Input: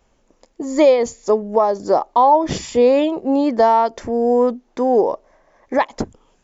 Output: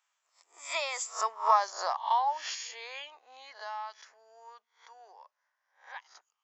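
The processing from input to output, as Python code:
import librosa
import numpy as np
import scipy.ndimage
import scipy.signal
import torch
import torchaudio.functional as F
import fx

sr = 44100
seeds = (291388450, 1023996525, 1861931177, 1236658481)

y = fx.spec_swells(x, sr, rise_s=0.34)
y = fx.doppler_pass(y, sr, speed_mps=20, closest_m=6.0, pass_at_s=1.49)
y = scipy.signal.sosfilt(scipy.signal.butter(4, 1100.0, 'highpass', fs=sr, output='sos'), y)
y = F.gain(torch.from_numpy(y), 2.5).numpy()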